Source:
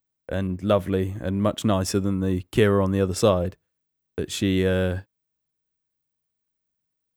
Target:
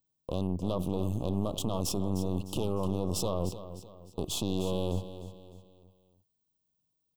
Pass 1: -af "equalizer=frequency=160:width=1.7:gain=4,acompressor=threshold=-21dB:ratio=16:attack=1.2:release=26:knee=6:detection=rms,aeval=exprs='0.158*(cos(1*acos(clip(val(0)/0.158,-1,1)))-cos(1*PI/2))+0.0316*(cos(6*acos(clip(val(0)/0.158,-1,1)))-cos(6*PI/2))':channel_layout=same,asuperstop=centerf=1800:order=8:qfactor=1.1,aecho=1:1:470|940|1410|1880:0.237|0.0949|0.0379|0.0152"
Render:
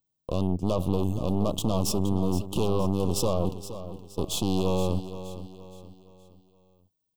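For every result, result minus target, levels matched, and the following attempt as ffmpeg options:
echo 166 ms late; downward compressor: peak gain reduction −7 dB
-af "equalizer=frequency=160:width=1.7:gain=4,acompressor=threshold=-21dB:ratio=16:attack=1.2:release=26:knee=6:detection=rms,aeval=exprs='0.158*(cos(1*acos(clip(val(0)/0.158,-1,1)))-cos(1*PI/2))+0.0316*(cos(6*acos(clip(val(0)/0.158,-1,1)))-cos(6*PI/2))':channel_layout=same,asuperstop=centerf=1800:order=8:qfactor=1.1,aecho=1:1:304|608|912|1216:0.237|0.0949|0.0379|0.0152"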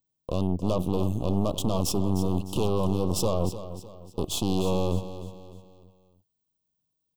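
downward compressor: peak gain reduction −7 dB
-af "equalizer=frequency=160:width=1.7:gain=4,acompressor=threshold=-28.5dB:ratio=16:attack=1.2:release=26:knee=6:detection=rms,aeval=exprs='0.158*(cos(1*acos(clip(val(0)/0.158,-1,1)))-cos(1*PI/2))+0.0316*(cos(6*acos(clip(val(0)/0.158,-1,1)))-cos(6*PI/2))':channel_layout=same,asuperstop=centerf=1800:order=8:qfactor=1.1,aecho=1:1:304|608|912|1216:0.237|0.0949|0.0379|0.0152"

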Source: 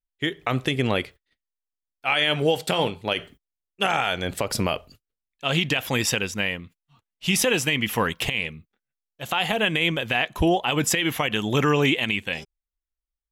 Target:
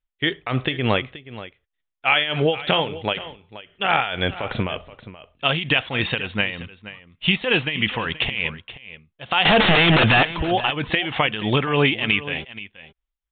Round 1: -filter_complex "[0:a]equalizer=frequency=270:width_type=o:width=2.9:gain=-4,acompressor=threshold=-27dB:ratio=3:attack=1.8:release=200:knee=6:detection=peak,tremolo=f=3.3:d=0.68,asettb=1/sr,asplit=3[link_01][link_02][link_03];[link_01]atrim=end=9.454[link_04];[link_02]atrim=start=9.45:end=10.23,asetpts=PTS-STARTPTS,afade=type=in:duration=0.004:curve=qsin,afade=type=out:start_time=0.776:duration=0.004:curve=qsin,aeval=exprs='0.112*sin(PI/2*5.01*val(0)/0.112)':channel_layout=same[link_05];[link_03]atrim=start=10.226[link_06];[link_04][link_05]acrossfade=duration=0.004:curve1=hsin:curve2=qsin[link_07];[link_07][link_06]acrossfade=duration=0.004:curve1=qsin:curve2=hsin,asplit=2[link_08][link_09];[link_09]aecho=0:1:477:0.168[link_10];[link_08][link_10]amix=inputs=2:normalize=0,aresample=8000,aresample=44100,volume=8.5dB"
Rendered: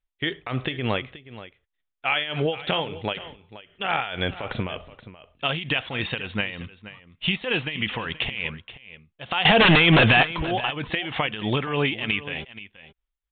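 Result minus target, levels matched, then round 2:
downward compressor: peak gain reduction +6 dB
-filter_complex "[0:a]equalizer=frequency=270:width_type=o:width=2.9:gain=-4,acompressor=threshold=-17.5dB:ratio=3:attack=1.8:release=200:knee=6:detection=peak,tremolo=f=3.3:d=0.68,asettb=1/sr,asplit=3[link_01][link_02][link_03];[link_01]atrim=end=9.454[link_04];[link_02]atrim=start=9.45:end=10.23,asetpts=PTS-STARTPTS,afade=type=in:duration=0.004:curve=qsin,afade=type=out:start_time=0.776:duration=0.004:curve=qsin,aeval=exprs='0.112*sin(PI/2*5.01*val(0)/0.112)':channel_layout=same[link_05];[link_03]atrim=start=10.226[link_06];[link_04][link_05]acrossfade=duration=0.004:curve1=hsin:curve2=qsin[link_07];[link_07][link_06]acrossfade=duration=0.004:curve1=qsin:curve2=hsin,asplit=2[link_08][link_09];[link_09]aecho=0:1:477:0.168[link_10];[link_08][link_10]amix=inputs=2:normalize=0,aresample=8000,aresample=44100,volume=8.5dB"

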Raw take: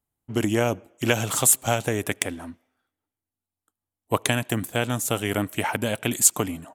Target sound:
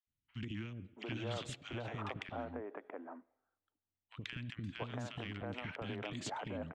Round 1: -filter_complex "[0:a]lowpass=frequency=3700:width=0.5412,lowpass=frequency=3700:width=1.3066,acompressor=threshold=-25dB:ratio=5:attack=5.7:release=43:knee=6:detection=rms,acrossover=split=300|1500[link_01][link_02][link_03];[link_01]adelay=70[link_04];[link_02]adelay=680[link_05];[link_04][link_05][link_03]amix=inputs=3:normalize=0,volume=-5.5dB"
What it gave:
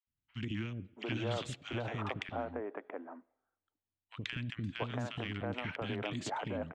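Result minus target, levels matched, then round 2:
downward compressor: peak gain reduction −5 dB
-filter_complex "[0:a]lowpass=frequency=3700:width=0.5412,lowpass=frequency=3700:width=1.3066,acompressor=threshold=-31.5dB:ratio=5:attack=5.7:release=43:knee=6:detection=rms,acrossover=split=300|1500[link_01][link_02][link_03];[link_01]adelay=70[link_04];[link_02]adelay=680[link_05];[link_04][link_05][link_03]amix=inputs=3:normalize=0,volume=-5.5dB"

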